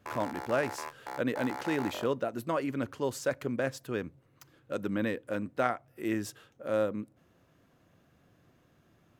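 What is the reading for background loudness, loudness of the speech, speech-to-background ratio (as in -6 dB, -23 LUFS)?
-41.5 LUFS, -33.5 LUFS, 8.0 dB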